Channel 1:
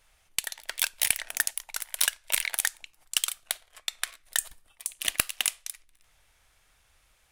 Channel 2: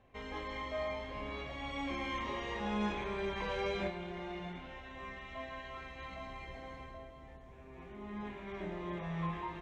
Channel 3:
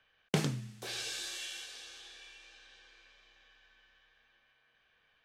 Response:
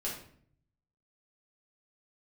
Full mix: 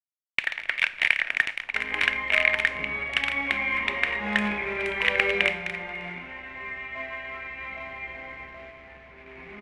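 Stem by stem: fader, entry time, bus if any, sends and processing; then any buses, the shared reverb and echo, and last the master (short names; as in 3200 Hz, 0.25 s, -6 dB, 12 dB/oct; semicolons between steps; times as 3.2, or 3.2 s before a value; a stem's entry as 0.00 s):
-3.0 dB, 0.00 s, no send, per-bin compression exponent 0.6; gate with hold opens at -34 dBFS
+1.0 dB, 1.60 s, send -7 dB, dry
-15.5 dB, 2.45 s, no send, dry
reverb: on, RT60 0.60 s, pre-delay 5 ms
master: low shelf 120 Hz -8.5 dB; companded quantiser 4-bit; synth low-pass 2200 Hz, resonance Q 4.8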